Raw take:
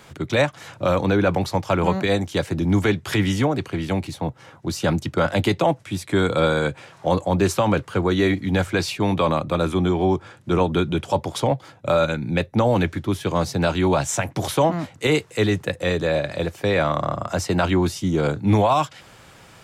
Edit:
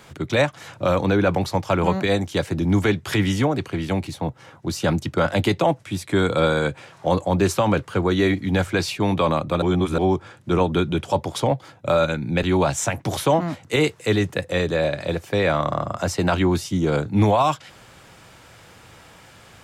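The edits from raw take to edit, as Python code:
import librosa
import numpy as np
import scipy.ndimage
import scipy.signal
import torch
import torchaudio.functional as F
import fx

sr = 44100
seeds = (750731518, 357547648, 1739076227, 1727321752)

y = fx.edit(x, sr, fx.reverse_span(start_s=9.62, length_s=0.36),
    fx.cut(start_s=12.43, length_s=1.31), tone=tone)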